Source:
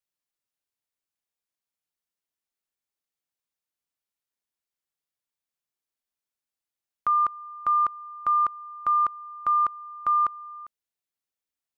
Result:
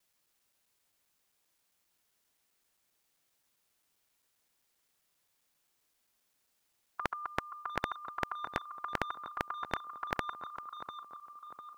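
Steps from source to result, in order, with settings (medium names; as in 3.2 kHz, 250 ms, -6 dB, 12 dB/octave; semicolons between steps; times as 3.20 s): time reversed locally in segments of 132 ms; tape echo 698 ms, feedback 48%, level -15 dB, low-pass 1.3 kHz; spectrum-flattening compressor 4:1; trim +3 dB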